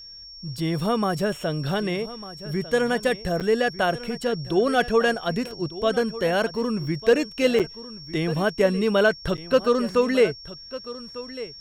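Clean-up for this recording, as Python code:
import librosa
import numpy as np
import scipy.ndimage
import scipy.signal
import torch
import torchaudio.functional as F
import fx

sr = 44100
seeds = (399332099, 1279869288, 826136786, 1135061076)

y = fx.fix_declip(x, sr, threshold_db=-9.0)
y = fx.notch(y, sr, hz=5500.0, q=30.0)
y = fx.fix_interpolate(y, sr, at_s=(3.4, 7.59, 9.37), length_ms=7.5)
y = fx.fix_echo_inverse(y, sr, delay_ms=1199, level_db=-15.5)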